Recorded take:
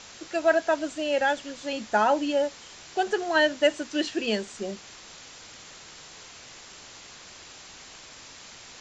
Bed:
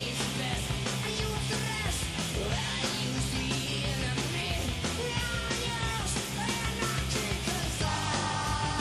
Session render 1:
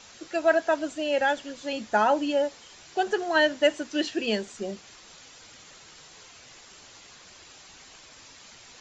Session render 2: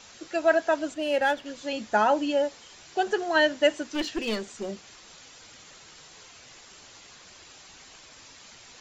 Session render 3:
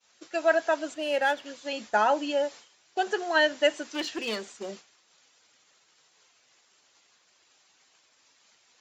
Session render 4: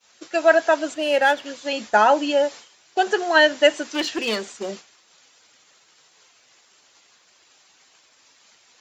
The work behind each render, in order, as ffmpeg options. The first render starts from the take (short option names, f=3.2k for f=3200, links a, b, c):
-af "afftdn=nr=6:nf=-47"
-filter_complex "[0:a]asettb=1/sr,asplit=3[a][b][c];[a]atrim=end=0.944[d];[b]atrim=start=0.94:end=1.46,asetpts=PTS-STARTPTS,afade=t=in:d=0.004:c=qsin,afade=t=out:st=0.516:d=0.004:c=qsin,adynamicsmooth=sensitivity=8:basefreq=4.1k[e];[c]atrim=start=1.456[f];[d][e]acrossfade=d=0.004:c1=hsin:c2=qsin[g];[g][f]acrossfade=d=0.004:c1=qsin:c2=hsin,asettb=1/sr,asplit=3[h][i][j];[h]atrim=end=3.924[k];[i]atrim=start=3.92:end=4.69,asetpts=PTS-STARTPTS,afade=t=in:d=0.004:c=qsin,afade=t=out:st=0.766:d=0.004:c=qsin,aeval=exprs='clip(val(0),-1,0.0398)':c=same[l];[j]atrim=start=4.686[m];[k][l]acrossfade=d=0.004:c1=hsin:c2=qsin[n];[n][m]acrossfade=d=0.004:c1=qsin:c2=hsin"
-af "highpass=f=420:p=1,agate=range=-33dB:threshold=-40dB:ratio=3:detection=peak"
-af "volume=7.5dB"